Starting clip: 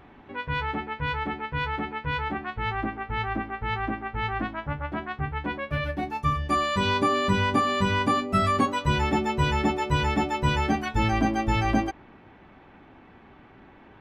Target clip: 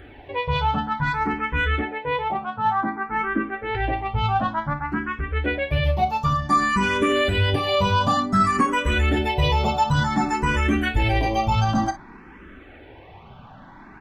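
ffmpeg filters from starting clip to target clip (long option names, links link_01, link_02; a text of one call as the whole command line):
ffmpeg -i in.wav -filter_complex "[0:a]asettb=1/sr,asplit=3[link_01][link_02][link_03];[link_01]atrim=end=1.814[link_04];[link_02]atrim=start=1.81:end=3.75,asetpts=PTS-STARTPTS,afade=type=in:duration=0.004:curve=qsin,afade=type=out:start_time=1.936:duration=0.004:curve=qsin,acrossover=split=160 2000:gain=0.0708 1 0.224[link_05][link_06][link_07];[link_05][link_06][link_07]amix=inputs=3:normalize=0[link_08];[link_03]atrim=start=3.746[link_09];[link_04][link_08]acrossfade=duration=0.004:curve1=hsin:curve2=qsin[link_10];[link_10][link_09]acrossfade=duration=0.004:curve1=qsin:curve2=hsin,asplit=3[link_11][link_12][link_13];[link_11]afade=type=out:start_time=4.73:duration=0.02[link_14];[link_12]acompressor=threshold=-30dB:ratio=4,afade=type=in:start_time=4.73:duration=0.02,afade=type=out:start_time=5.3:duration=0.02[link_15];[link_13]afade=type=in:start_time=5.3:duration=0.02[link_16];[link_14][link_15][link_16]amix=inputs=3:normalize=0,asoftclip=type=tanh:threshold=-15dB,flanger=delay=0.6:depth=1.5:regen=48:speed=1.2:shape=sinusoidal,asplit=2[link_17][link_18];[link_18]aecho=0:1:31|55:0.224|0.168[link_19];[link_17][link_19]amix=inputs=2:normalize=0,alimiter=level_in=22.5dB:limit=-1dB:release=50:level=0:latency=1,asplit=2[link_20][link_21];[link_21]afreqshift=0.55[link_22];[link_20][link_22]amix=inputs=2:normalize=1,volume=-8.5dB" out.wav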